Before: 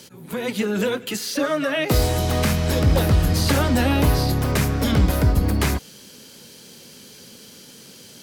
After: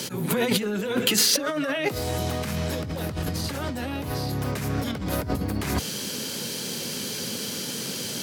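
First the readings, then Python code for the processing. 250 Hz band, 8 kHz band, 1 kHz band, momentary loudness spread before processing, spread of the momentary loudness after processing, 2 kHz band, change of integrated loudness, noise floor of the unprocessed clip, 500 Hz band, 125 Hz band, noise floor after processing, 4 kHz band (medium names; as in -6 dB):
-5.5 dB, +3.0 dB, -5.5 dB, 7 LU, 8 LU, -4.0 dB, -6.0 dB, -45 dBFS, -4.5 dB, -9.5 dB, -33 dBFS, +1.5 dB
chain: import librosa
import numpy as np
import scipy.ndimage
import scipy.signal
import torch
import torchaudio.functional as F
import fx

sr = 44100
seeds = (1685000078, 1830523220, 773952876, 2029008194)

y = scipy.signal.sosfilt(scipy.signal.butter(4, 86.0, 'highpass', fs=sr, output='sos'), x)
y = fx.over_compress(y, sr, threshold_db=-31.0, ratio=-1.0)
y = y * 10.0 ** (4.0 / 20.0)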